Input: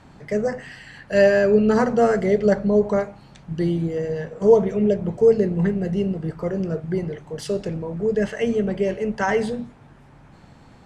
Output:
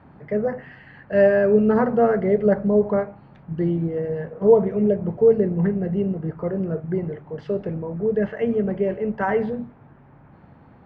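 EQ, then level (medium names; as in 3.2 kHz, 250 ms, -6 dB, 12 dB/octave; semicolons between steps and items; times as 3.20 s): high-pass 59 Hz; low-pass 1.8 kHz 12 dB/octave; distance through air 96 m; 0.0 dB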